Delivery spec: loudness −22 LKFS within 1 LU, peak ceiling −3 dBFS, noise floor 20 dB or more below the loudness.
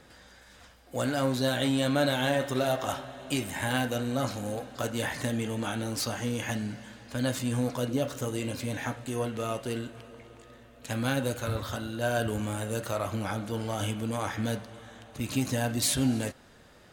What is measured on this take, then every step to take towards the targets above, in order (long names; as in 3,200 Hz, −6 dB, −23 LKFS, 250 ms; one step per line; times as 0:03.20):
integrated loudness −30.5 LKFS; sample peak −12.5 dBFS; target loudness −22.0 LKFS
→ level +8.5 dB